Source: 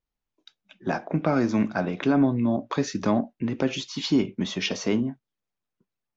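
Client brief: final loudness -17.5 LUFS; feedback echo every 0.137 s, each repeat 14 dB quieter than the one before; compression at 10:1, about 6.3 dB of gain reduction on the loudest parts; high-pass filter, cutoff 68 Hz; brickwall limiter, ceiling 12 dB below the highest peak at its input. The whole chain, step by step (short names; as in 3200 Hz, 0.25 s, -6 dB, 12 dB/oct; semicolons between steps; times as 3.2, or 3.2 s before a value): HPF 68 Hz; compressor 10:1, threshold -23 dBFS; limiter -25.5 dBFS; feedback echo 0.137 s, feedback 20%, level -14 dB; gain +17.5 dB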